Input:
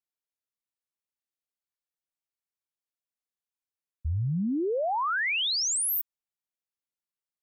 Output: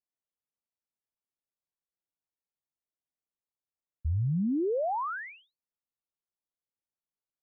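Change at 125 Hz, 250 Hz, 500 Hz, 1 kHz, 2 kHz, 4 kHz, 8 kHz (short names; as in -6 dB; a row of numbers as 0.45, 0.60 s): 0.0 dB, 0.0 dB, -1.0 dB, -3.5 dB, -12.0 dB, under -35 dB, under -40 dB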